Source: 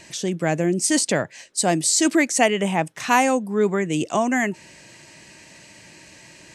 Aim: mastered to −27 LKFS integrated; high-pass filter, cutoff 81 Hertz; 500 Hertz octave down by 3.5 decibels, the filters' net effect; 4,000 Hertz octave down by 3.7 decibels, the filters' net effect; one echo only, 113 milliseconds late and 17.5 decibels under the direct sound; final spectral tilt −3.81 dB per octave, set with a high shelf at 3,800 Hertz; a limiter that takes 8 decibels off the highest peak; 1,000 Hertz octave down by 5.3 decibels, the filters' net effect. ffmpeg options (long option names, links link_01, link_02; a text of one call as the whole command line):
ffmpeg -i in.wav -af "highpass=81,equalizer=frequency=500:width_type=o:gain=-3,equalizer=frequency=1000:width_type=o:gain=-6,highshelf=frequency=3800:gain=4,equalizer=frequency=4000:width_type=o:gain=-8,alimiter=limit=-13.5dB:level=0:latency=1,aecho=1:1:113:0.133,volume=-3dB" out.wav